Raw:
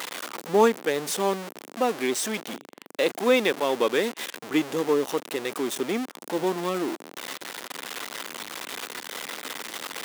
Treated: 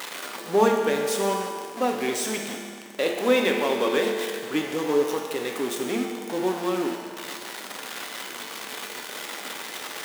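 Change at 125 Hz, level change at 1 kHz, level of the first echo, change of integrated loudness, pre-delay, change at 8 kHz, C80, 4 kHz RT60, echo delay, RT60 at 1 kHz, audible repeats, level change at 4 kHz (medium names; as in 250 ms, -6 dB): +0.5 dB, +1.0 dB, no echo, +0.5 dB, 5 ms, +0.5 dB, 4.5 dB, 1.8 s, no echo, 1.9 s, no echo, +0.5 dB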